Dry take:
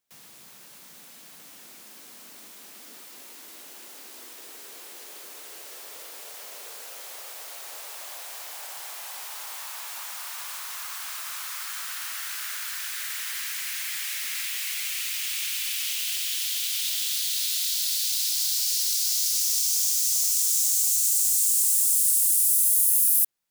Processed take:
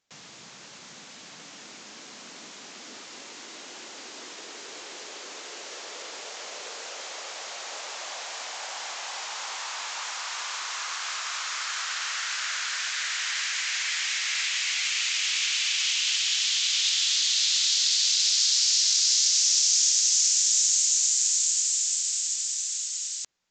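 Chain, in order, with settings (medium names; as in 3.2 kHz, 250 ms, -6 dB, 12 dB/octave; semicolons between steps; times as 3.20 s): resampled via 16 kHz; trim +6.5 dB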